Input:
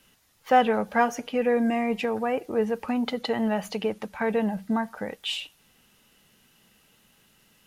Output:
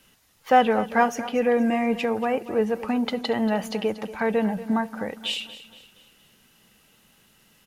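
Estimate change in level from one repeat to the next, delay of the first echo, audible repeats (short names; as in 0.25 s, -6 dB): -7.0 dB, 0.235 s, 3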